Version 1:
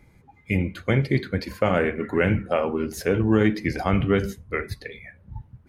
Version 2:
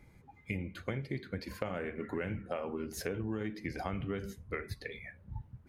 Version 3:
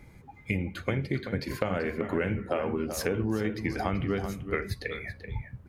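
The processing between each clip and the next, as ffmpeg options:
ffmpeg -i in.wav -af "acompressor=threshold=-30dB:ratio=5,volume=-4.5dB" out.wav
ffmpeg -i in.wav -filter_complex "[0:a]asplit=2[link_01][link_02];[link_02]adelay=384.8,volume=-9dB,highshelf=frequency=4000:gain=-8.66[link_03];[link_01][link_03]amix=inputs=2:normalize=0,volume=7.5dB" out.wav

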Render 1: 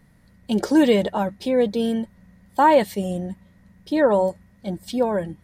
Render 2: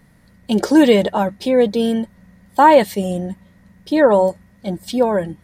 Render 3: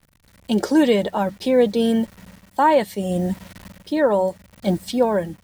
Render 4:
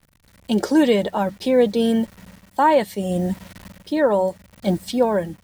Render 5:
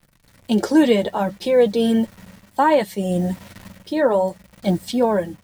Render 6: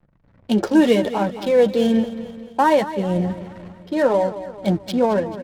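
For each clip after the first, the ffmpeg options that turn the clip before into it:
ffmpeg -i in.wav -af "lowshelf=frequency=140:gain=-4,volume=5.5dB" out.wav
ffmpeg -i in.wav -filter_complex "[0:a]acrossover=split=120[link_01][link_02];[link_02]acrusher=bits=7:mix=0:aa=0.000001[link_03];[link_01][link_03]amix=inputs=2:normalize=0,dynaudnorm=framelen=110:gausssize=5:maxgain=16dB,volume=-6dB" out.wav
ffmpeg -i in.wav -af anull out.wav
ffmpeg -i in.wav -af "flanger=delay=5.7:depth=3.7:regen=-46:speed=0.67:shape=sinusoidal,volume=4.5dB" out.wav
ffmpeg -i in.wav -af "adynamicsmooth=sensitivity=6.5:basefreq=1000,aecho=1:1:219|438|657|876|1095:0.211|0.106|0.0528|0.0264|0.0132" out.wav

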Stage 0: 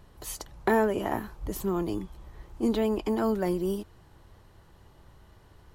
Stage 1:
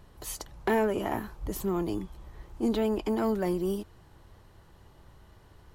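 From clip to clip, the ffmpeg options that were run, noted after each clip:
ffmpeg -i in.wav -af "asoftclip=type=tanh:threshold=-18dB" out.wav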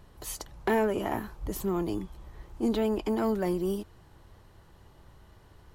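ffmpeg -i in.wav -af anull out.wav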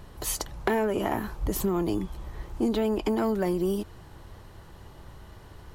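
ffmpeg -i in.wav -af "acompressor=threshold=-31dB:ratio=6,volume=8dB" out.wav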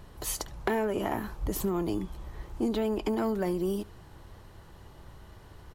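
ffmpeg -i in.wav -af "aecho=1:1:71:0.075,volume=-3dB" out.wav

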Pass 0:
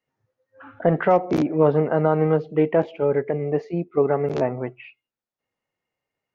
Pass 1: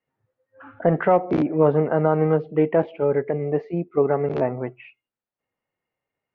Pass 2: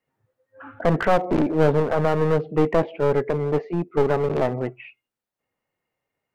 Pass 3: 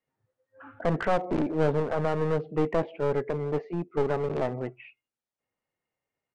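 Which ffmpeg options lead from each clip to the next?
ffmpeg -i in.wav -af "lowpass=2800" out.wav
ffmpeg -i in.wav -af "acontrast=37,aeval=exprs='clip(val(0),-1,0.106)':channel_layout=same,volume=-2.5dB" out.wav
ffmpeg -i in.wav -af "aresample=22050,aresample=44100,volume=-6.5dB" out.wav

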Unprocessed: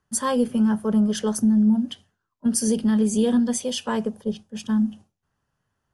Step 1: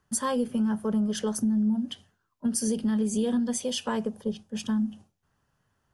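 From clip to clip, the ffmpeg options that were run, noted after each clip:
ffmpeg -i in.wav -af "acompressor=threshold=-34dB:ratio=2,volume=3dB" out.wav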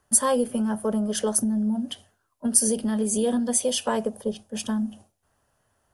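ffmpeg -i in.wav -af "equalizer=frequency=160:width_type=o:width=0.67:gain=-7,equalizer=frequency=630:width_type=o:width=0.67:gain=8,equalizer=frequency=10000:width_type=o:width=0.67:gain=11,volume=2.5dB" out.wav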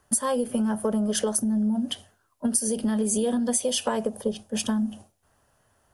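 ffmpeg -i in.wav -af "acompressor=threshold=-25dB:ratio=10,volume=4dB" out.wav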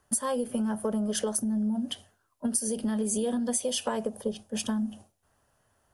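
ffmpeg -i in.wav -af "asoftclip=type=hard:threshold=-11.5dB,volume=-4dB" out.wav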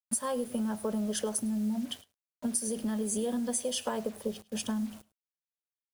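ffmpeg -i in.wav -af "acrusher=bits=7:mix=0:aa=0.000001,aecho=1:1:104:0.075,volume=-3dB" out.wav

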